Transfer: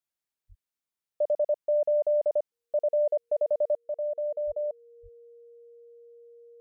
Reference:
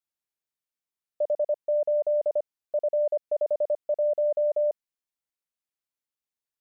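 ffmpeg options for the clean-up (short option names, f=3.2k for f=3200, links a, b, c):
-filter_complex "[0:a]bandreject=f=470:w=30,asplit=3[a][b][c];[a]afade=t=out:st=0.48:d=0.02[d];[b]highpass=f=140:w=0.5412,highpass=f=140:w=1.3066,afade=t=in:st=0.48:d=0.02,afade=t=out:st=0.6:d=0.02[e];[c]afade=t=in:st=0.6:d=0.02[f];[d][e][f]amix=inputs=3:normalize=0,asplit=3[g][h][i];[g]afade=t=out:st=4.46:d=0.02[j];[h]highpass=f=140:w=0.5412,highpass=f=140:w=1.3066,afade=t=in:st=4.46:d=0.02,afade=t=out:st=4.58:d=0.02[k];[i]afade=t=in:st=4.58:d=0.02[l];[j][k][l]amix=inputs=3:normalize=0,asplit=3[m][n][o];[m]afade=t=out:st=5.02:d=0.02[p];[n]highpass=f=140:w=0.5412,highpass=f=140:w=1.3066,afade=t=in:st=5.02:d=0.02,afade=t=out:st=5.14:d=0.02[q];[o]afade=t=in:st=5.14:d=0.02[r];[p][q][r]amix=inputs=3:normalize=0,asetnsamples=n=441:p=0,asendcmd='3.76 volume volume 6dB',volume=0dB"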